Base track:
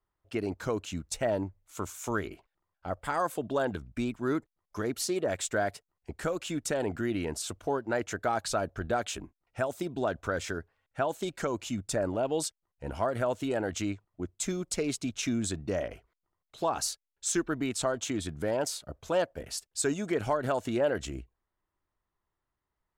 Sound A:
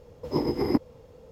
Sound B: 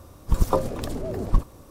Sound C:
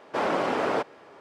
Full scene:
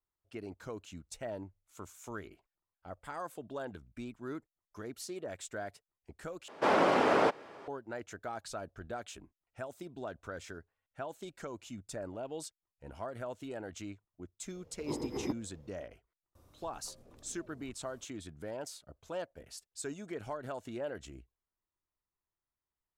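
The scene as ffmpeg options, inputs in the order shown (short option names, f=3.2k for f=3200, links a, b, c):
-filter_complex "[0:a]volume=-11.5dB[a];[2:a]acompressor=threshold=-39dB:ratio=6:attack=3.2:release=140:knee=1:detection=peak[b];[a]asplit=2[c][d];[c]atrim=end=6.484[e];[3:a]atrim=end=1.2,asetpts=PTS-STARTPTS,volume=-0.5dB[f];[d]atrim=start=7.676[g];[1:a]atrim=end=1.31,asetpts=PTS-STARTPTS,volume=-11.5dB,afade=t=in:d=0.004:c=hsin,afade=t=out:st=1.306:d=0.004:c=hsin,adelay=14550[h];[b]atrim=end=1.7,asetpts=PTS-STARTPTS,volume=-16dB,afade=t=in:d=0.004:c=hsin,afade=t=out:st=1.696:d=0.004:c=hsin,adelay=16350[i];[e][f]acrossfade=d=0.004:c1=hsin:c2=hsin[j];[j][g]acrossfade=d=0.004:c1=hsin:c2=hsin[k];[k][h][i]amix=inputs=3:normalize=0"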